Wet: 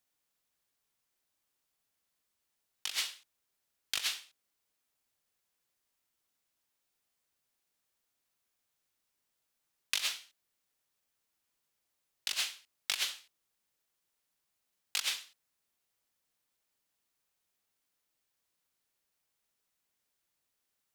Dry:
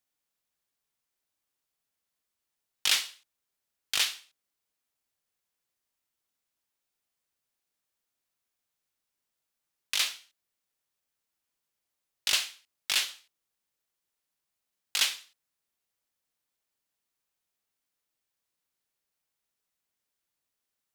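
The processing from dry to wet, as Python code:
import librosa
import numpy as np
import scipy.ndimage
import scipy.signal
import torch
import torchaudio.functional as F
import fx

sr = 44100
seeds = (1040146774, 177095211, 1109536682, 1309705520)

y = fx.over_compress(x, sr, threshold_db=-31.0, ratio=-0.5)
y = F.gain(torch.from_numpy(y), -2.0).numpy()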